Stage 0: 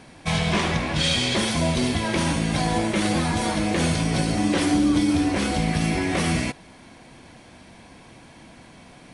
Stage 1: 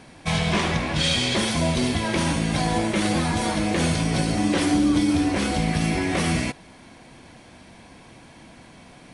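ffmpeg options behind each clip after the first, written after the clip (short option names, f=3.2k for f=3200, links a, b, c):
-af anull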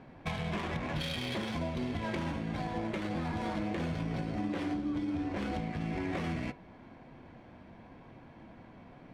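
-af "acompressor=threshold=-26dB:ratio=12,flanger=delay=7.4:depth=2.3:regen=-76:speed=0.99:shape=sinusoidal,adynamicsmooth=sensitivity=5.5:basefreq=1.7k"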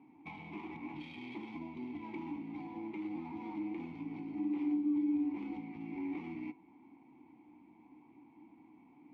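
-filter_complex "[0:a]asplit=3[a][b][c];[a]bandpass=f=300:t=q:w=8,volume=0dB[d];[b]bandpass=f=870:t=q:w=8,volume=-6dB[e];[c]bandpass=f=2.24k:t=q:w=8,volume=-9dB[f];[d][e][f]amix=inputs=3:normalize=0,volume=3dB"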